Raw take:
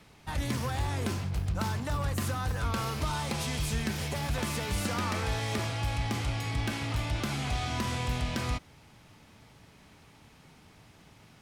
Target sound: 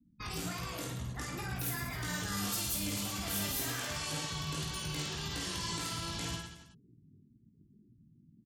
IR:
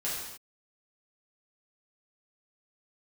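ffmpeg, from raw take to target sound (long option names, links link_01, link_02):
-af "afftfilt=real='re*gte(hypot(re,im),0.00891)':imag='im*gte(hypot(re,im),0.00891)':win_size=1024:overlap=0.75,alimiter=level_in=7.5dB:limit=-24dB:level=0:latency=1:release=71,volume=-7.5dB,flanger=delay=22.5:depth=4.9:speed=1.4,crystalizer=i=4.5:c=0,asetrate=59535,aresample=44100,aecho=1:1:50|110|182|268.4|372.1:0.631|0.398|0.251|0.158|0.1"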